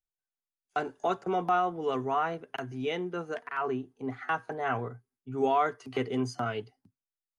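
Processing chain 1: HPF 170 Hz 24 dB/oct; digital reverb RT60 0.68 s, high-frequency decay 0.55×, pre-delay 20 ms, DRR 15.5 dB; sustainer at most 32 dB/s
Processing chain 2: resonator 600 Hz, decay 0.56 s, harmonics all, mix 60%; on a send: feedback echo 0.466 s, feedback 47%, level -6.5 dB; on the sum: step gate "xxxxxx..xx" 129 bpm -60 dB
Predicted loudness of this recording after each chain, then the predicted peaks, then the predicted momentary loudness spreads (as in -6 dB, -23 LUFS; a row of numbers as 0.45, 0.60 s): -30.0, -40.0 LUFS; -14.5, -21.0 dBFS; 10, 10 LU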